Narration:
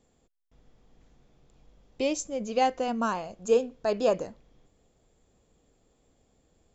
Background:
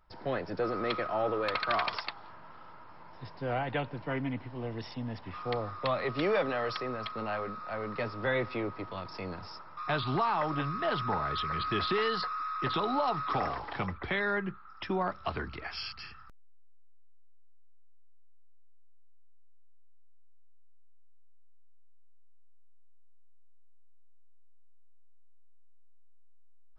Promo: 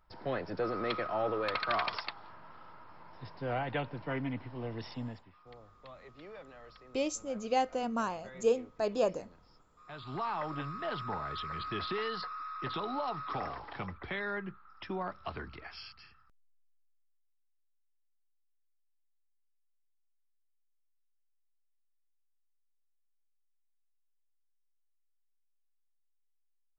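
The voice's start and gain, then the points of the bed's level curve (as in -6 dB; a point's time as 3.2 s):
4.95 s, -5.0 dB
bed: 5.06 s -2 dB
5.35 s -21 dB
9.79 s -21 dB
10.25 s -6 dB
15.55 s -6 dB
17.35 s -25.5 dB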